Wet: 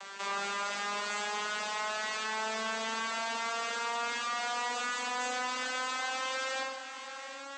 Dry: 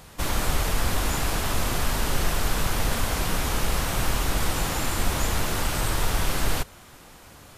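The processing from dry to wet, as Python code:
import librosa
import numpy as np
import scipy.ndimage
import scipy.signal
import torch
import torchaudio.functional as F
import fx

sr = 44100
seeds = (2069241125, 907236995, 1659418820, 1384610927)

p1 = fx.vocoder_glide(x, sr, note=55, semitones=6)
p2 = scipy.signal.sosfilt(scipy.signal.butter(2, 990.0, 'highpass', fs=sr, output='sos'), p1)
p3 = p2 + fx.echo_single(p2, sr, ms=728, db=-21.0, dry=0)
p4 = fx.rev_schroeder(p3, sr, rt60_s=0.44, comb_ms=32, drr_db=2.0)
y = fx.env_flatten(p4, sr, amount_pct=50)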